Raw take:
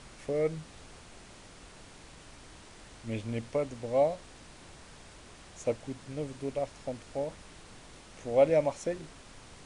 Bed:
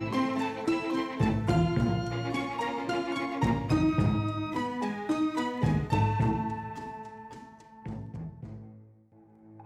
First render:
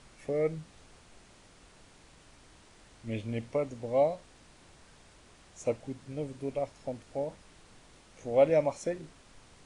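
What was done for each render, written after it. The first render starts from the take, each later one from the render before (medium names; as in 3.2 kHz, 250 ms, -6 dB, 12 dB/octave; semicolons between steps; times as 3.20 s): noise print and reduce 6 dB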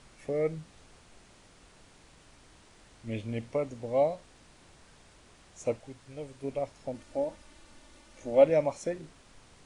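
5.79–6.44 s: peaking EQ 210 Hz -9.5 dB 1.8 oct; 6.94–8.44 s: comb 3.4 ms, depth 60%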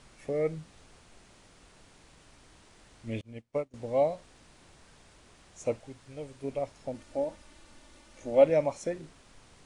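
3.21–3.74 s: upward expansion 2.5:1, over -46 dBFS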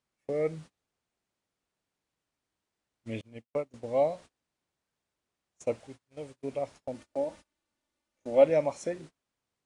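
high-pass 120 Hz 6 dB/octave; gate -46 dBFS, range -28 dB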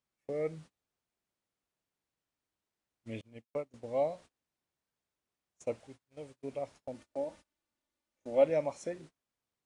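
trim -5 dB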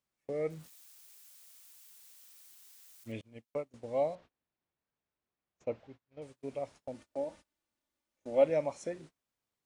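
0.50–3.12 s: zero-crossing glitches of -49 dBFS; 4.15–6.22 s: distance through air 210 m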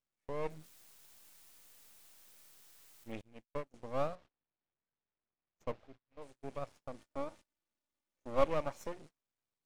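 half-wave rectifier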